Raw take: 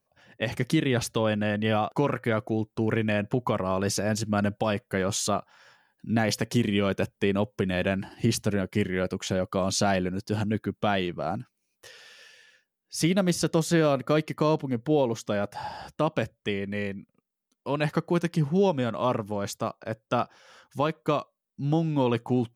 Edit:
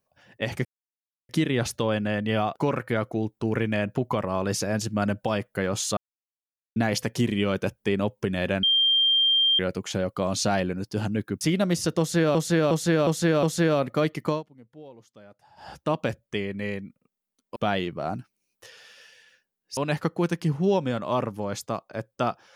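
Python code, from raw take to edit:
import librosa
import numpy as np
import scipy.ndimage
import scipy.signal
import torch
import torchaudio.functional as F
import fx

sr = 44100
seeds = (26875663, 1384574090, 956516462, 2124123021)

y = fx.edit(x, sr, fx.insert_silence(at_s=0.65, length_s=0.64),
    fx.silence(start_s=5.33, length_s=0.79),
    fx.bleep(start_s=7.99, length_s=0.96, hz=3180.0, db=-17.5),
    fx.move(start_s=10.77, length_s=2.21, to_s=17.69),
    fx.repeat(start_s=13.56, length_s=0.36, count=5),
    fx.fade_down_up(start_s=14.42, length_s=1.41, db=-22.0, fade_s=0.14), tone=tone)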